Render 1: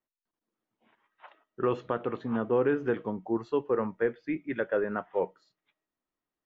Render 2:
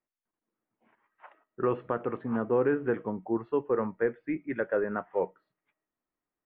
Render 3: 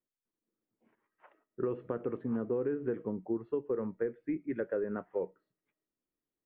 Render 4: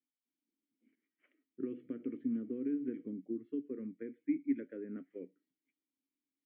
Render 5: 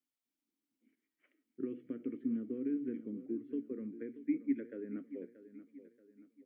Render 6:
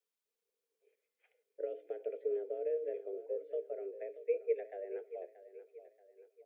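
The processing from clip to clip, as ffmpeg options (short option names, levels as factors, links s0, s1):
-af "lowpass=f=2400:w=0.5412,lowpass=f=2400:w=1.3066"
-af "lowshelf=f=580:t=q:w=1.5:g=6.5,acompressor=threshold=0.0891:ratio=6,volume=0.398"
-filter_complex "[0:a]asplit=3[s0][s1][s2];[s0]bandpass=f=270:t=q:w=8,volume=1[s3];[s1]bandpass=f=2290:t=q:w=8,volume=0.501[s4];[s2]bandpass=f=3010:t=q:w=8,volume=0.355[s5];[s3][s4][s5]amix=inputs=3:normalize=0,volume=2.11"
-af "aecho=1:1:631|1262|1893|2524:0.2|0.0858|0.0369|0.0159"
-af "afreqshift=180"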